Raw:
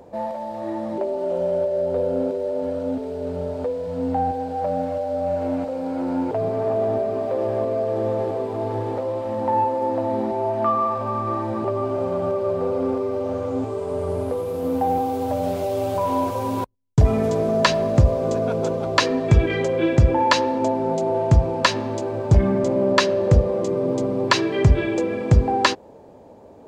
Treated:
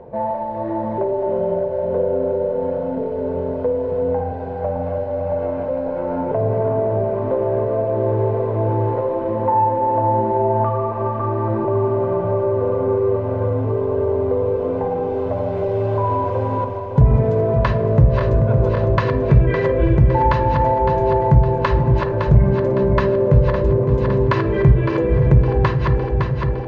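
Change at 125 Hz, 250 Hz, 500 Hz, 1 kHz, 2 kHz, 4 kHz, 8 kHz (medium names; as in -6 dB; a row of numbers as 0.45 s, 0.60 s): +6.5 dB, +1.5 dB, +3.5 dB, +3.0 dB, -2.0 dB, under -10 dB, under -20 dB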